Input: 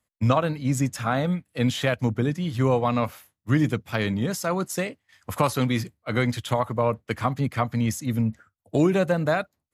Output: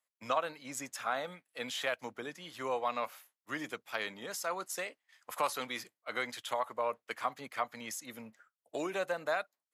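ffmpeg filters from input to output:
-af "highpass=620,volume=0.447"

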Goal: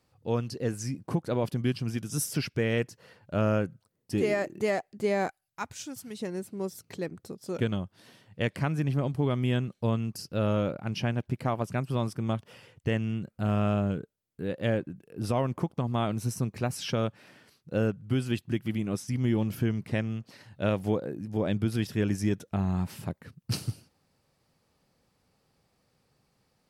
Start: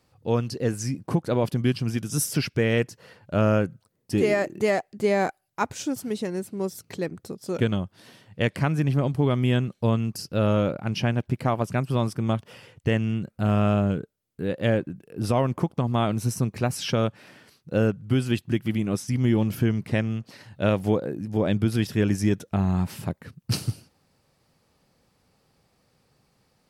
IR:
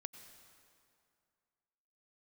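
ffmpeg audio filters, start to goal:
-filter_complex "[0:a]asettb=1/sr,asplit=3[s0][s1][s2];[s0]atrim=end=5.284[s3];[s1]atrim=start=5.28:end=6.2,asetpts=PTS-STARTPTS,afade=t=in:d=0.004:c=qsin,afade=t=out:st=0.916:d=0.004:c=qsin,equalizer=f=420:t=o:w=2.5:g=-9.5[s4];[s2]atrim=start=6.196[s5];[s3][s4]acrossfade=d=0.004:c1=hsin:c2=qsin[s6];[s6][s5]acrossfade=d=0.004:c1=qsin:c2=hsin,volume=0.562"

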